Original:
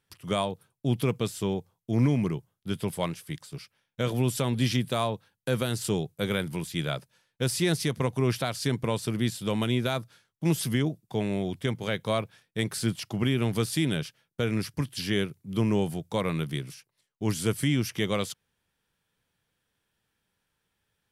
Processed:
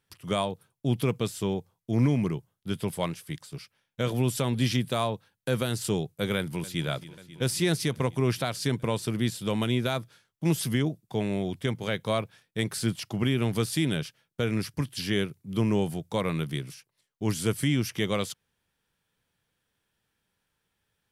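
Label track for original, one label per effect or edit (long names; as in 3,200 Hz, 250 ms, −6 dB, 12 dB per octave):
6.360000	6.870000	delay throw 270 ms, feedback 80%, level −16.5 dB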